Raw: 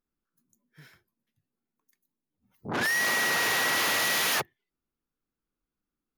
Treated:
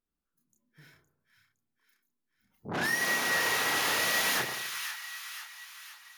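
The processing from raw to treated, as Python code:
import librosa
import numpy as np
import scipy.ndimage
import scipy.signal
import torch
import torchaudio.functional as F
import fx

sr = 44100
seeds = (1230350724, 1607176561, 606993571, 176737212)

y = fx.echo_split(x, sr, split_hz=1100.0, low_ms=83, high_ms=513, feedback_pct=52, wet_db=-8.0)
y = fx.chorus_voices(y, sr, voices=2, hz=0.33, base_ms=30, depth_ms=1.7, mix_pct=40)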